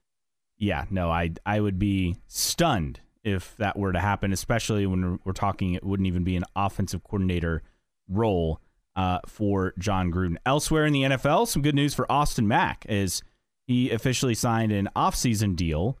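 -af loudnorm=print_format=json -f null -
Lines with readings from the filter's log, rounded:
"input_i" : "-25.8",
"input_tp" : "-9.0",
"input_lra" : "3.5",
"input_thresh" : "-36.0",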